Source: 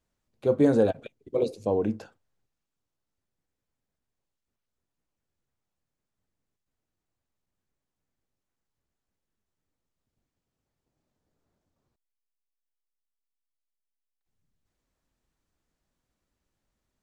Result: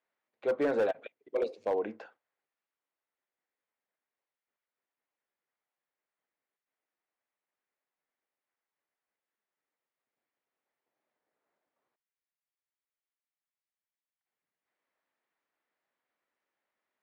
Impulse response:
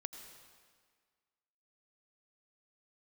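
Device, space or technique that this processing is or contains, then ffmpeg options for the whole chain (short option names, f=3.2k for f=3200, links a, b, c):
megaphone: -af "highpass=540,lowpass=2.6k,equalizer=f=2k:t=o:w=0.49:g=5,asoftclip=type=hard:threshold=-23dB"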